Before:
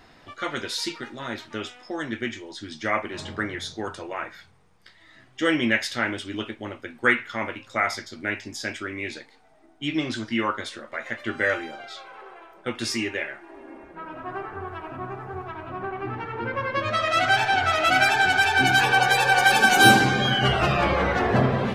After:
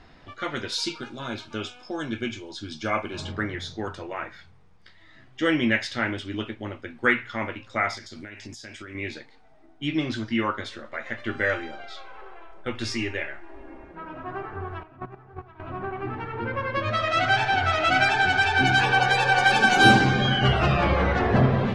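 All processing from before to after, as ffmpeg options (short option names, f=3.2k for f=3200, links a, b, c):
-filter_complex "[0:a]asettb=1/sr,asplit=3[a][b][c];[a]atrim=end=0.724[d];[b]atrim=start=0.72:end=3.32,asetpts=PTS-STARTPTS,afade=t=in:d=0.004:c=qsin,afade=t=out:st=2.596:d=0.004:c=qsin,asuperstop=centerf=1900:order=8:qfactor=5.5,highshelf=f=4.6k:g=8[e];[c]atrim=start=3.316[f];[d][e]acrossfade=d=0.004:c1=hsin:c2=qsin[g];[g][f]acrossfade=d=0.004:c1=qsin:c2=hsin,asettb=1/sr,asplit=3[h][i][j];[h]atrim=end=7.974[k];[i]atrim=start=7.97:end=8.95,asetpts=PTS-STARTPTS,afade=t=in:d=0.004:c=qsin,afade=t=out:st=0.976:d=0.004:c=qsin,equalizer=f=11k:t=o:w=1.9:g=12,acompressor=threshold=-35dB:ratio=12:attack=3.2:release=140:knee=1:detection=peak[l];[j]atrim=start=8.946[m];[k][l]acrossfade=d=0.004:c1=hsin:c2=qsin[n];[n][m]acrossfade=d=0.004:c1=qsin:c2=hsin,asettb=1/sr,asplit=3[o][p][q];[o]atrim=end=10.514[r];[p]atrim=start=10.51:end=13.84,asetpts=PTS-STARTPTS,afade=t=in:d=0.004:c=qsin,afade=t=out:st=3.326:d=0.004:c=qsin,asubboost=boost=6.5:cutoff=68,aecho=1:1:62|124|186:0.0794|0.0357|0.0161,atrim=end_sample=146853[s];[q]atrim=start=13.836[t];[r][s]acrossfade=d=0.004:c1=hsin:c2=qsin[u];[u][t]acrossfade=d=0.004:c1=qsin:c2=hsin,asettb=1/sr,asplit=3[v][w][x];[v]atrim=end=14.834[y];[w]atrim=start=14.83:end=15.6,asetpts=PTS-STARTPTS,afade=t=in:d=0.004:c=qsin,afade=t=out:st=0.766:d=0.004:c=qsin,agate=range=-21dB:threshold=-31dB:ratio=16:release=100:detection=peak,acontrast=81[z];[x]atrim=start=15.596[aa];[y][z]acrossfade=d=0.004:c1=hsin:c2=qsin[ab];[ab][aa]acrossfade=d=0.004:c1=qsin:c2=hsin,lowpass=5.8k,lowshelf=f=140:g=9.5,bandreject=f=60:t=h:w=6,bandreject=f=120:t=h:w=6,volume=-1.5dB"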